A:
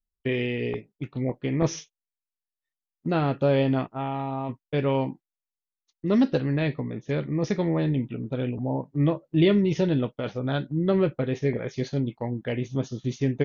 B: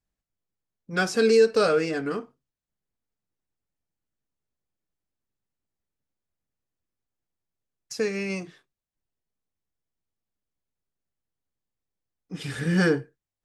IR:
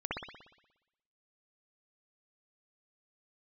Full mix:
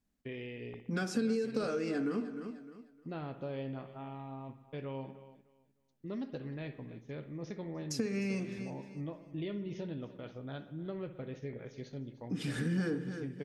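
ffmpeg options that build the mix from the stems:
-filter_complex "[0:a]volume=-16.5dB,asplit=3[a][b][c];[b]volume=-15.5dB[d];[c]volume=-17dB[e];[1:a]acompressor=threshold=-29dB:ratio=2.5,equalizer=f=240:w=2.3:g=15,volume=0dB,asplit=3[f][g][h];[g]volume=-16.5dB[i];[h]volume=-13.5dB[j];[2:a]atrim=start_sample=2205[k];[d][i]amix=inputs=2:normalize=0[l];[l][k]afir=irnorm=-1:irlink=0[m];[e][j]amix=inputs=2:normalize=0,aecho=0:1:305|610|915|1220:1|0.25|0.0625|0.0156[n];[a][f][m][n]amix=inputs=4:normalize=0,acompressor=threshold=-38dB:ratio=2"

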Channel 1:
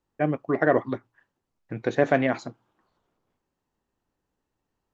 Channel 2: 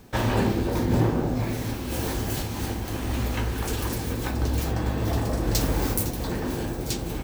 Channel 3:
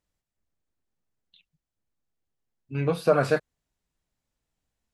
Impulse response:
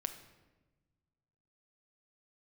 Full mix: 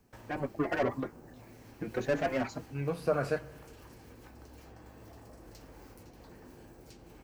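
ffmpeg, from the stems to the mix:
-filter_complex "[0:a]asoftclip=type=tanh:threshold=-22dB,asplit=2[a][b];[b]adelay=4.7,afreqshift=2.5[c];[a][c]amix=inputs=2:normalize=1,adelay=100,volume=0.5dB[d];[1:a]acrossover=split=290|5500[e][f][g];[e]acompressor=threshold=-38dB:ratio=4[h];[f]acompressor=threshold=-37dB:ratio=4[i];[g]acompressor=threshold=-50dB:ratio=4[j];[h][i][j]amix=inputs=3:normalize=0,volume=-17dB[k];[2:a]volume=-12.5dB,asplit=2[l][m];[m]volume=-4dB[n];[3:a]atrim=start_sample=2205[o];[n][o]afir=irnorm=-1:irlink=0[p];[d][k][l][p]amix=inputs=4:normalize=0,equalizer=f=3.6k:t=o:w=0.32:g=-7"

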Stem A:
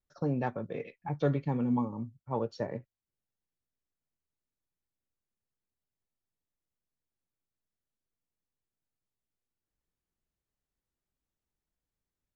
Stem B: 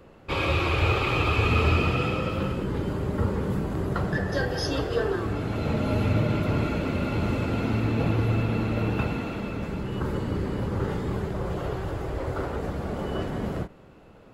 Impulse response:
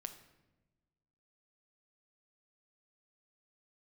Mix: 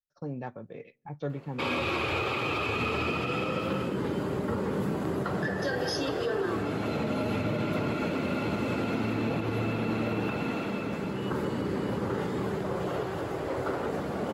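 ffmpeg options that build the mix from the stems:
-filter_complex "[0:a]agate=range=-12dB:threshold=-54dB:ratio=16:detection=peak,volume=-6dB,asplit=2[a][b];[b]volume=-22dB[c];[1:a]highpass=170,adelay=1300,volume=1dB[d];[2:a]atrim=start_sample=2205[e];[c][e]afir=irnorm=-1:irlink=0[f];[a][d][f]amix=inputs=3:normalize=0,alimiter=limit=-20.5dB:level=0:latency=1:release=97"

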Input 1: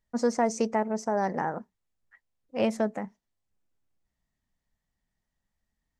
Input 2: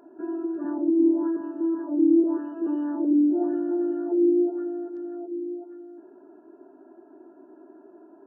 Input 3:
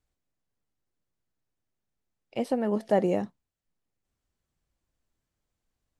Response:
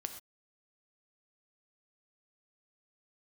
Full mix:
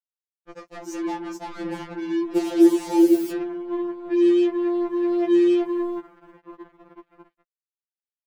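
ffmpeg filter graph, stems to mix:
-filter_complex "[0:a]flanger=delay=6.1:depth=3.5:regen=65:speed=0.37:shape=sinusoidal,adelay=350,volume=-0.5dB[a];[1:a]dynaudnorm=f=160:g=11:m=16.5dB,volume=0dB[b];[2:a]highpass=520,acompressor=threshold=-31dB:ratio=16,volume=-1.5dB,asplit=2[c][d];[d]apad=whole_len=364608[e];[b][e]sidechaingate=range=-21dB:threshold=-49dB:ratio=16:detection=peak[f];[a][c]amix=inputs=2:normalize=0,acompressor=threshold=-33dB:ratio=10,volume=0dB[g];[f][g]amix=inputs=2:normalize=0,dynaudnorm=f=570:g=5:m=16dB,acrusher=bits=4:mix=0:aa=0.5,afftfilt=real='re*2.83*eq(mod(b,8),0)':imag='im*2.83*eq(mod(b,8),0)':win_size=2048:overlap=0.75"

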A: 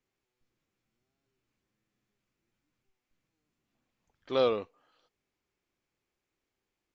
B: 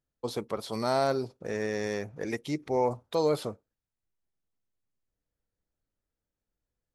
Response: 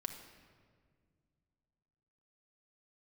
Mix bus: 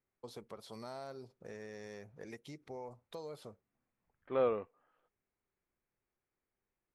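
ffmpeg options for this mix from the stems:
-filter_complex "[0:a]lowpass=f=2.2k:w=0.5412,lowpass=f=2.2k:w=1.3066,volume=-4.5dB[a];[1:a]acompressor=threshold=-33dB:ratio=3,volume=-11.5dB[b];[a][b]amix=inputs=2:normalize=0,equalizer=f=300:w=5.2:g=-4"

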